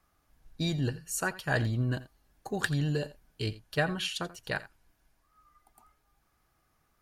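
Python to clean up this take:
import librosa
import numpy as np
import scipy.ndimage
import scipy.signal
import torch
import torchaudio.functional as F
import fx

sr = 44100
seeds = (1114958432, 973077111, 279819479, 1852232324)

y = fx.fix_echo_inverse(x, sr, delay_ms=85, level_db=-17.5)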